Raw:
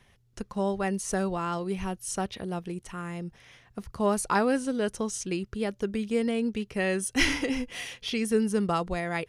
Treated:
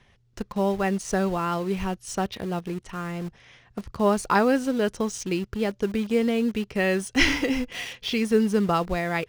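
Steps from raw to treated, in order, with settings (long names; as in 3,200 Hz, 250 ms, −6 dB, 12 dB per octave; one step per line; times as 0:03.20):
low-pass filter 6,300 Hz 12 dB per octave
in parallel at −11 dB: bit reduction 6 bits
on the sum: level +2 dB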